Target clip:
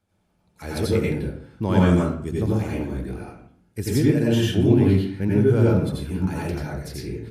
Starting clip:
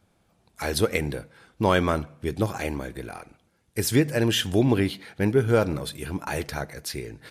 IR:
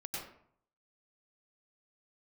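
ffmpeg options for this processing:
-filter_complex "[0:a]asettb=1/sr,asplit=3[s0][s1][s2];[s0]atrim=end=1.774[s3];[s1]atrim=start=1.77:end=2.32,asetpts=PTS-STARTPTS,afade=t=in:d=0.004:c=qsin,afade=t=out:st=0.546:d=0.004:c=qsin,equalizer=f=7600:w=2.4:g=13.5[s4];[s2]atrim=start=2.316[s5];[s3][s4]acrossfade=d=0.004:c1=hsin:c2=qsin[s6];[s6][s5]acrossfade=d=0.004:c1=qsin:c2=hsin,acrossover=split=320|1700[s7][s8][s9];[s7]dynaudnorm=f=340:g=3:m=3.55[s10];[s10][s8][s9]amix=inputs=3:normalize=0[s11];[1:a]atrim=start_sample=2205,asetrate=48510,aresample=44100[s12];[s11][s12]afir=irnorm=-1:irlink=0,volume=0.708"

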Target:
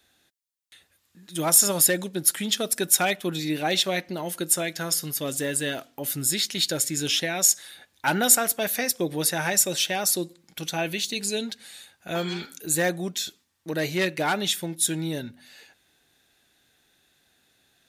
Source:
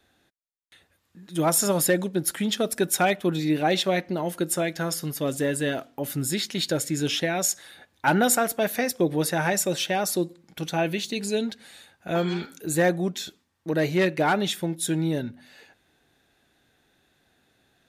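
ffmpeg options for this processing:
-af "highshelf=f=2300:g=11.5,volume=0.596"

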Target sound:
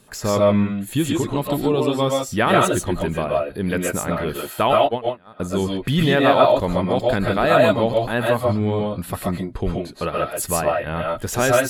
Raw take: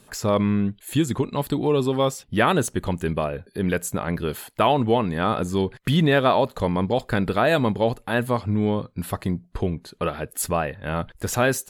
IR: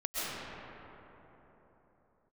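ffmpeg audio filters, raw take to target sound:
-filter_complex "[0:a]asettb=1/sr,asplit=3[s0][s1][s2];[s0]atrim=end=4.734[s3];[s1]atrim=start=4.73:end=5.4,asetpts=PTS-STARTPTS,afade=t=in:d=0.004:c=qsin,afade=t=out:st=0.666:d=0.004:c=qsin,agate=range=0.0251:threshold=0.158:ratio=16:detection=peak[s4];[s2]atrim=start=5.396[s5];[s3][s4]acrossfade=d=0.004:c1=hsin:c2=qsin[s6];[s6][s5]acrossfade=d=0.004:c1=qsin:c2=hsin[s7];[1:a]atrim=start_sample=2205,afade=t=out:st=0.2:d=0.01,atrim=end_sample=9261[s8];[s7][s8]afir=irnorm=-1:irlink=0,volume=1.41"

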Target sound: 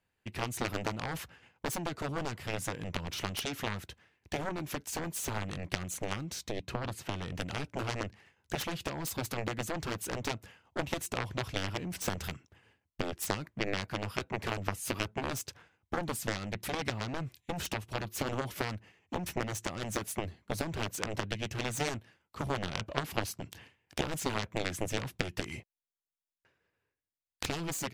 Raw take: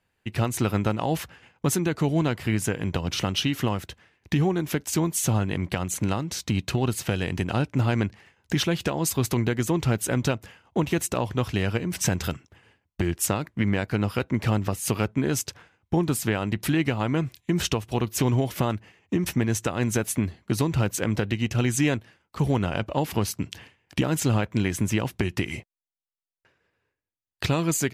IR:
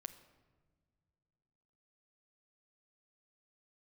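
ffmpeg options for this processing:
-filter_complex "[0:a]asettb=1/sr,asplit=3[s0][s1][s2];[s0]atrim=end=6.504[s3];[s1]atrim=start=6.5:end=7.35,asetpts=PTS-STARTPTS,afade=t=in:d=0.004:c=qsin,afade=t=out:st=0.846:d=0.004:c=qsin,highshelf=f=3100:g=-8.5[s4];[s2]atrim=start=7.346[s5];[s3][s4]acrossfade=d=0.004:c1=hsin:c2=qsin[s6];[s6][s5]acrossfade=d=0.004:c1=qsin:c2=hsin,aeval=exprs='0.299*(cos(1*acos(clip(val(0)/0.299,-1,1)))-cos(1*PI/2))+0.133*(cos(3*acos(clip(val(0)/0.299,-1,1)))-cos(3*PI/2))+0.00596*(cos(6*acos(clip(val(0)/0.299,-1,1)))-cos(6*PI/2))+0.00473*(cos(7*acos(clip(val(0)/0.299,-1,1)))-cos(7*PI/2))+0.00376*(cos(8*acos(clip(val(0)/0.299,-1,1)))-cos(8*PI/2))':c=same"

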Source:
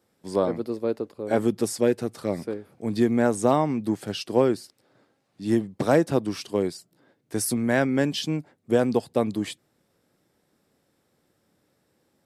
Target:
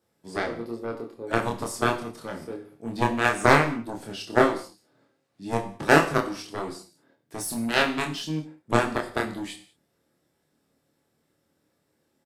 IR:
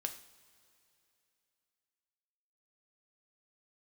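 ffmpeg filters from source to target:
-filter_complex "[0:a]aeval=exprs='0.398*(cos(1*acos(clip(val(0)/0.398,-1,1)))-cos(1*PI/2))+0.178*(cos(3*acos(clip(val(0)/0.398,-1,1)))-cos(3*PI/2))':c=same,asplit=2[s0][s1];[s1]adelay=26,volume=0.75[s2];[s0][s2]amix=inputs=2:normalize=0[s3];[1:a]atrim=start_sample=2205,afade=t=out:st=0.26:d=0.01,atrim=end_sample=11907[s4];[s3][s4]afir=irnorm=-1:irlink=0,volume=1.78"

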